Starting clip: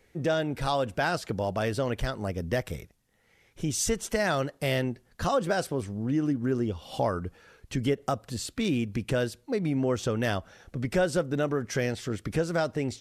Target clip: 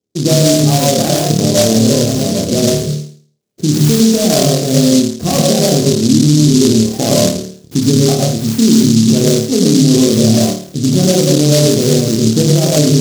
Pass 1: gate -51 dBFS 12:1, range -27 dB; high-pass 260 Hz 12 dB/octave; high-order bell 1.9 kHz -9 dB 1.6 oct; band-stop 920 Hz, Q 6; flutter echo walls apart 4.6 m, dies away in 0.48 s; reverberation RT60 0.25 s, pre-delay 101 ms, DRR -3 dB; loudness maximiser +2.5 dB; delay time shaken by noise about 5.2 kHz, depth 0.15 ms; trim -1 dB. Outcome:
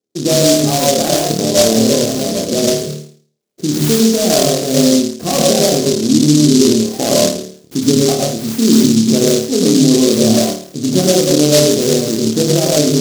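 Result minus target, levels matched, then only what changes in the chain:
125 Hz band -6.0 dB
change: high-pass 120 Hz 12 dB/octave

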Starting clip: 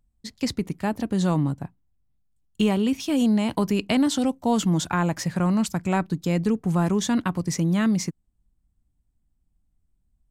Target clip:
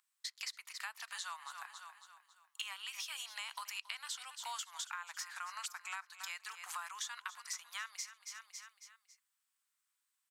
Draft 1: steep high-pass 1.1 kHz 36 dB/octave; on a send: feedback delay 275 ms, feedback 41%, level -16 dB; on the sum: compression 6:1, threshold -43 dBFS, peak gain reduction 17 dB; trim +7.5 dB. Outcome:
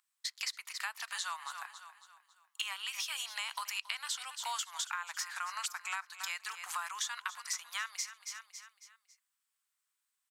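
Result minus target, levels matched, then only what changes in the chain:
compression: peak gain reduction -5.5 dB
change: compression 6:1, threshold -49.5 dBFS, peak gain reduction 22.5 dB

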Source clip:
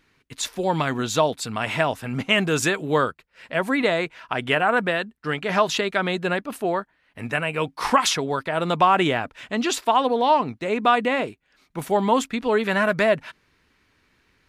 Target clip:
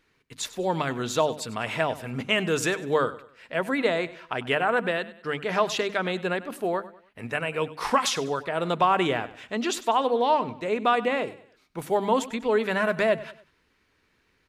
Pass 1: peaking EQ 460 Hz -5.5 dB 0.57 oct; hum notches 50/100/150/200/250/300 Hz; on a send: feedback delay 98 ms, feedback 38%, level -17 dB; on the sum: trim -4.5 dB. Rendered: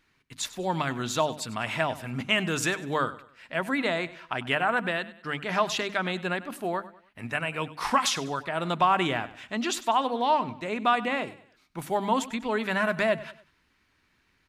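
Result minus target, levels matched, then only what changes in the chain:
500 Hz band -3.0 dB
change: peaking EQ 460 Hz +3.5 dB 0.57 oct

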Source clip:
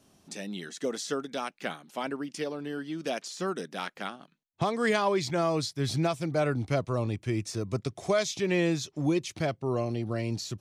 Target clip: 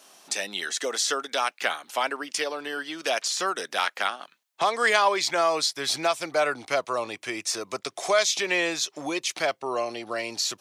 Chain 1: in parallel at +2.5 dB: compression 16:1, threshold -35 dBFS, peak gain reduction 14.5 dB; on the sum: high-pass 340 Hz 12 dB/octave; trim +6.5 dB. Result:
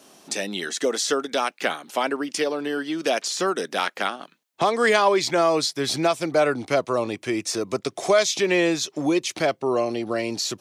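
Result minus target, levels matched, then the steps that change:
250 Hz band +8.0 dB
change: high-pass 730 Hz 12 dB/octave

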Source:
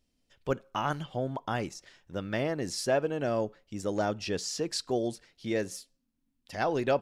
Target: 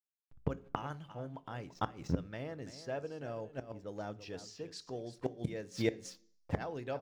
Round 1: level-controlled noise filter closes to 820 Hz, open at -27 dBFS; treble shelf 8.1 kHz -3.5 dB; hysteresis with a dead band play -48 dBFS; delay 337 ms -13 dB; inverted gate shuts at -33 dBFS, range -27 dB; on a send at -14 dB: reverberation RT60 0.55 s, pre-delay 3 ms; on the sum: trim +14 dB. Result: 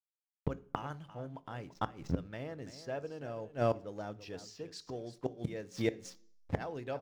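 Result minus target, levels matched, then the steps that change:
hysteresis with a dead band: distortion +6 dB
change: hysteresis with a dead band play -55 dBFS

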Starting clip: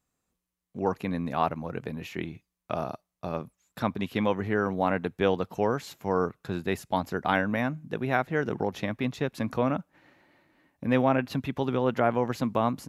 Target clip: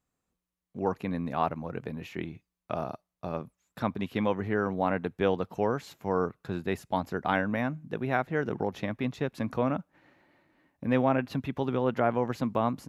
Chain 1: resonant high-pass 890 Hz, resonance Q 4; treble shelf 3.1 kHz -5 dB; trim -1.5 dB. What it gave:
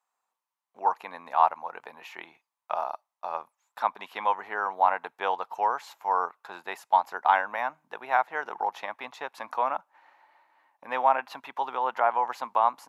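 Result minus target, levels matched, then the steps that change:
1 kHz band +6.5 dB
remove: resonant high-pass 890 Hz, resonance Q 4

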